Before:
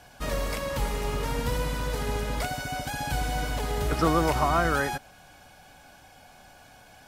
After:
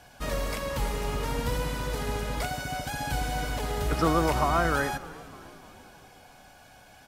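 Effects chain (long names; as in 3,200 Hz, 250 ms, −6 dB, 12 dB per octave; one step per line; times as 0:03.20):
echo with shifted repeats 302 ms, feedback 60%, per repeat −110 Hz, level −19 dB
on a send at −17 dB: convolution reverb RT60 0.75 s, pre-delay 25 ms
on the sum: level −1 dB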